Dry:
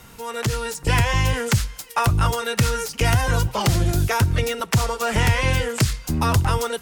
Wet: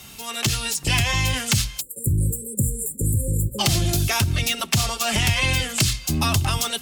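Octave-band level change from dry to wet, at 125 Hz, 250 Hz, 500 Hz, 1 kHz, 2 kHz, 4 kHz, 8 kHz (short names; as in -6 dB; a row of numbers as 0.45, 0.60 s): -2.0, -1.5, -7.5, -5.5, -0.5, +5.0, +5.0 dB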